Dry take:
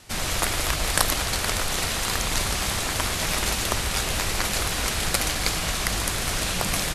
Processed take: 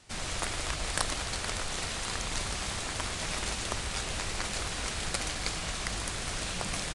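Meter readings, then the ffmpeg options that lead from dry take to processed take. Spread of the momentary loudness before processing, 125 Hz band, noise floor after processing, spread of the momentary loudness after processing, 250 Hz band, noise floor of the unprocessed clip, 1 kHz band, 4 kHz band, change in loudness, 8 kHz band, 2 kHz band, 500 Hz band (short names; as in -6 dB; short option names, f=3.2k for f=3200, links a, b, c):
2 LU, -8.5 dB, -36 dBFS, 2 LU, -8.5 dB, -28 dBFS, -8.5 dB, -8.5 dB, -9.0 dB, -9.0 dB, -8.5 dB, -8.5 dB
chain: -af "aresample=22050,aresample=44100,volume=-8.5dB"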